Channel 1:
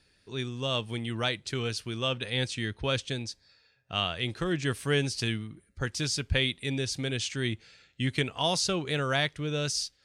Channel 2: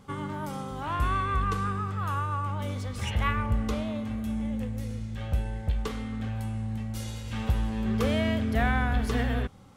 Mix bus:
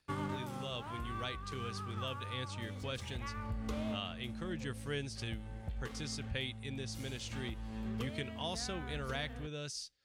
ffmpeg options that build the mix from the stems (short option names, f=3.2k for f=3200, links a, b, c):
-filter_complex "[0:a]volume=-12.5dB,asplit=2[a][b];[1:a]aeval=exprs='sgn(val(0))*max(abs(val(0))-0.00447,0)':c=same,acompressor=threshold=-30dB:ratio=6,volume=-1.5dB[c];[b]apad=whole_len=430609[d];[c][d]sidechaincompress=threshold=-45dB:ratio=8:attack=16:release=1320[e];[a][e]amix=inputs=2:normalize=0"